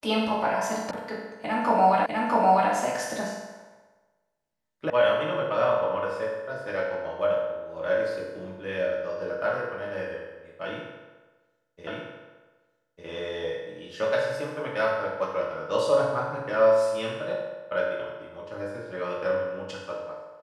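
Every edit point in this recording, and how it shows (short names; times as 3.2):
0.91 sound cut off
2.06 repeat of the last 0.65 s
4.9 sound cut off
11.87 repeat of the last 1.2 s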